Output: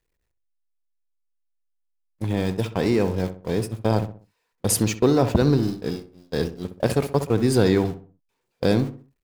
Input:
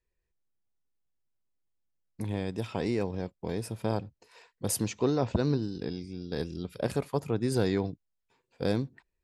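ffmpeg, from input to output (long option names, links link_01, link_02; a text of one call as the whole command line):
ffmpeg -i in.wav -filter_complex "[0:a]aeval=exprs='val(0)+0.5*0.00944*sgn(val(0))':channel_layout=same,agate=range=-38dB:threshold=-32dB:ratio=16:detection=peak,asplit=2[link_01][link_02];[link_02]adelay=64,lowpass=frequency=1600:poles=1,volume=-10.5dB,asplit=2[link_03][link_04];[link_04]adelay=64,lowpass=frequency=1600:poles=1,volume=0.38,asplit=2[link_05][link_06];[link_06]adelay=64,lowpass=frequency=1600:poles=1,volume=0.38,asplit=2[link_07][link_08];[link_08]adelay=64,lowpass=frequency=1600:poles=1,volume=0.38[link_09];[link_01][link_03][link_05][link_07][link_09]amix=inputs=5:normalize=0,volume=8dB" out.wav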